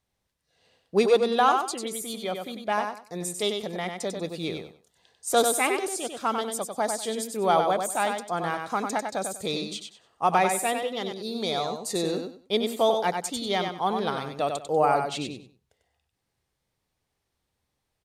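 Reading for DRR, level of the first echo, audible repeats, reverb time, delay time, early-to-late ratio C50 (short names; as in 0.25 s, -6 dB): none, -5.5 dB, 3, none, 96 ms, none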